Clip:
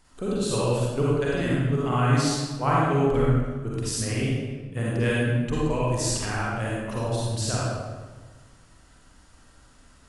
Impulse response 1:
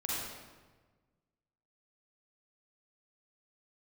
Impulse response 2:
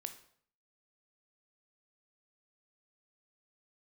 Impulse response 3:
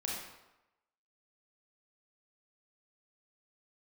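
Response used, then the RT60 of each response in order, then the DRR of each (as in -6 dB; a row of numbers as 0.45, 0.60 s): 1; 1.4, 0.60, 0.95 s; -6.5, 8.0, -3.5 dB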